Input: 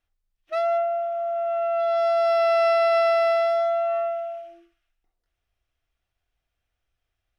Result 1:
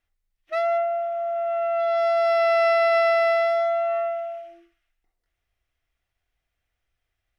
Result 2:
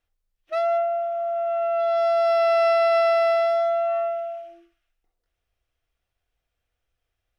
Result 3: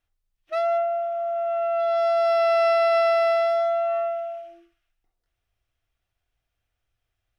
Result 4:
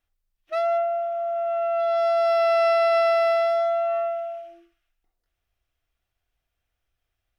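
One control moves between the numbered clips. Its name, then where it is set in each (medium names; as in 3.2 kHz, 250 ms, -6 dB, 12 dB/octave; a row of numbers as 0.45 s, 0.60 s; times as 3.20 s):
peaking EQ, frequency: 2 kHz, 490 Hz, 110 Hz, 15 kHz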